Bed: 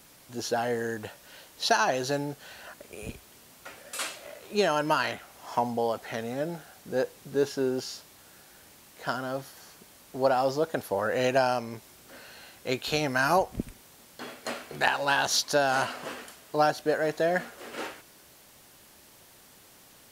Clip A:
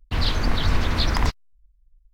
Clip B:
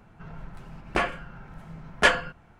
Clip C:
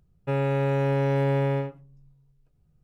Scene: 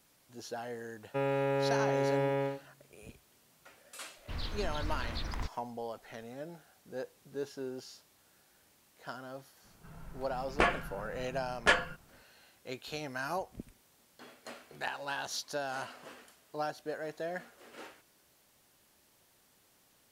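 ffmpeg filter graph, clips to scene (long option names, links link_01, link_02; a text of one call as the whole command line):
ffmpeg -i bed.wav -i cue0.wav -i cue1.wav -i cue2.wav -filter_complex "[0:a]volume=-12.5dB[link_01];[3:a]highpass=230[link_02];[2:a]dynaudnorm=framelen=250:gausssize=5:maxgain=11.5dB[link_03];[link_02]atrim=end=2.83,asetpts=PTS-STARTPTS,volume=-4dB,afade=type=in:duration=0.004:curve=hsin,afade=type=out:start_time=2.826:duration=0.004:curve=hsin,adelay=870[link_04];[1:a]atrim=end=2.13,asetpts=PTS-STARTPTS,volume=-16.5dB,afade=type=in:duration=0.004:curve=hsin,afade=type=out:start_time=2.126:duration=0.004:curve=hsin,adelay=183897S[link_05];[link_03]atrim=end=2.59,asetpts=PTS-STARTPTS,volume=-10dB,afade=type=in:duration=0.004:curve=hsin,afade=type=out:start_time=2.586:duration=0.004:curve=hsin,adelay=9640[link_06];[link_01][link_04][link_05][link_06]amix=inputs=4:normalize=0" out.wav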